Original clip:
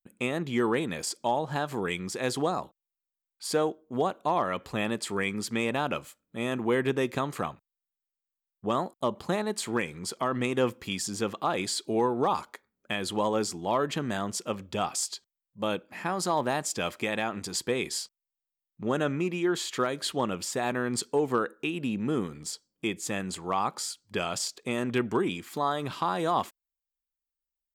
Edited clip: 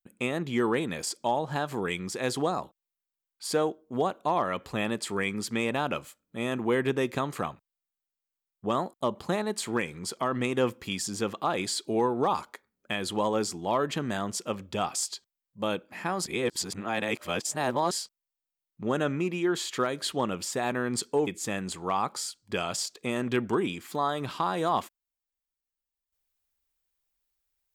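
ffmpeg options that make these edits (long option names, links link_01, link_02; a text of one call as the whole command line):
ffmpeg -i in.wav -filter_complex "[0:a]asplit=4[link_01][link_02][link_03][link_04];[link_01]atrim=end=16.262[link_05];[link_02]atrim=start=16.258:end=17.912,asetpts=PTS-STARTPTS,areverse[link_06];[link_03]atrim=start=17.908:end=21.272[link_07];[link_04]atrim=start=22.888[link_08];[link_05][link_06]acrossfade=duration=0.004:curve1=hsin:curve2=hsin[link_09];[link_09][link_07]acrossfade=duration=0.004:curve1=hsin:curve2=hsin[link_10];[link_10][link_08]acrossfade=duration=0.004:curve1=hsin:curve2=hsin" out.wav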